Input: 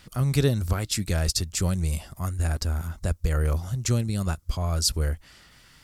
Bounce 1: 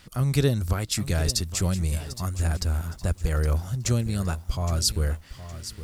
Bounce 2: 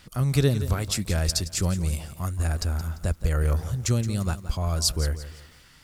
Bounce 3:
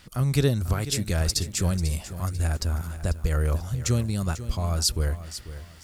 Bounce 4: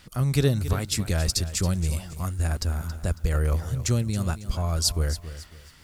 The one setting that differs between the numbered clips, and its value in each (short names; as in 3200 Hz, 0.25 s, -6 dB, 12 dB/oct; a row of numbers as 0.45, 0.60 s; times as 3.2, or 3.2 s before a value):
lo-fi delay, time: 0.815, 0.172, 0.493, 0.275 s